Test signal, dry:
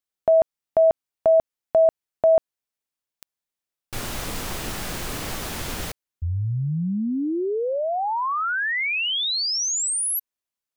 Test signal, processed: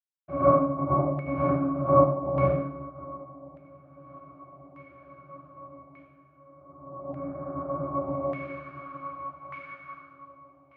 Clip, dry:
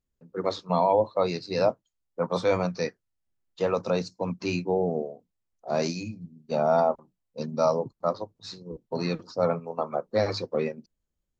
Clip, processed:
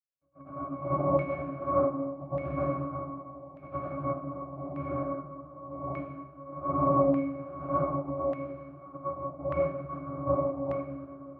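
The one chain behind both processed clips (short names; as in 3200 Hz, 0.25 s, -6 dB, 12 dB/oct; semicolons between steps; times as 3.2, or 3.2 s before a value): HPF 260 Hz 12 dB/oct; on a send: diffused feedback echo 0.661 s, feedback 64%, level -12 dB; on the sum: noise vocoder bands 2; octave resonator C#, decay 0.39 s; plate-style reverb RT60 1.2 s, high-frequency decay 0.95×, pre-delay 85 ms, DRR -9 dB; LFO low-pass saw down 0.84 Hz 820–2200 Hz; upward expander 1.5:1, over -43 dBFS; gain +4.5 dB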